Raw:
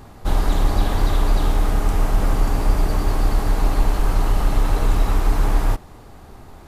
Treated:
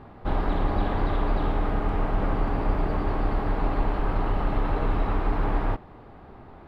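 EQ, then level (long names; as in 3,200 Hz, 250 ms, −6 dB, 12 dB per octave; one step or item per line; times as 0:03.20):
high-frequency loss of the air 440 metres
low-shelf EQ 100 Hz −9.5 dB
0.0 dB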